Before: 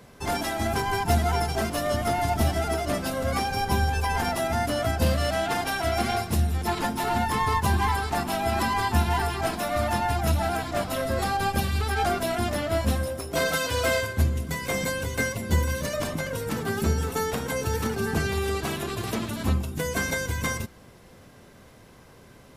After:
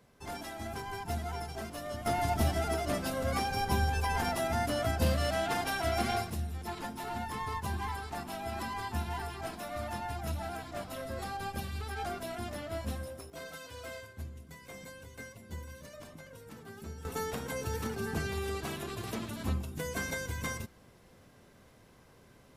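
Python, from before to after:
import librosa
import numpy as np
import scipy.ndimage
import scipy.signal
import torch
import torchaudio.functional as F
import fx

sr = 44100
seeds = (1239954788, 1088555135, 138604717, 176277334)

y = fx.gain(x, sr, db=fx.steps((0.0, -13.5), (2.06, -5.5), (6.3, -12.5), (13.3, -20.0), (17.05, -8.5)))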